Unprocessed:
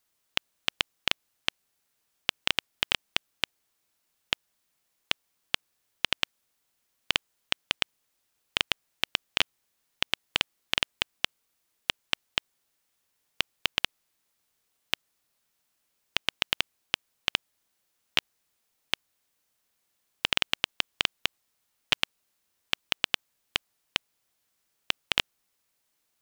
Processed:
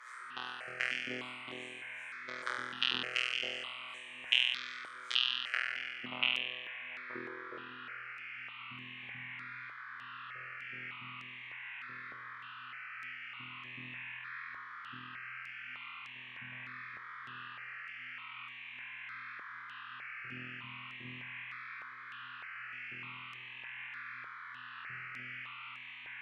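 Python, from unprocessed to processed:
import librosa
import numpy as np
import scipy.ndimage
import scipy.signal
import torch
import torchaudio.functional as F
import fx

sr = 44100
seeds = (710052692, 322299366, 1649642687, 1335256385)

y = scipy.signal.sosfilt(scipy.signal.butter(2, 81.0, 'highpass', fs=sr, output='sos'), x)
y = fx.high_shelf(y, sr, hz=7100.0, db=8.5)
y = fx.over_compress(y, sr, threshold_db=-33.0, ratio=-0.5)
y = fx.filter_sweep_lowpass(y, sr, from_hz=6600.0, to_hz=150.0, start_s=5.3, end_s=8.13, q=1.6)
y = fx.robotise(y, sr, hz=125.0)
y = fx.wah_lfo(y, sr, hz=2.6, low_hz=240.0, high_hz=2900.0, q=2.7)
y = fx.dmg_noise_band(y, sr, seeds[0], low_hz=1100.0, high_hz=2700.0, level_db=-67.0)
y = fx.room_flutter(y, sr, wall_m=4.1, rt60_s=1.3)
y = fx.phaser_held(y, sr, hz=3.3, low_hz=740.0, high_hz=5000.0)
y = y * 10.0 ** (16.5 / 20.0)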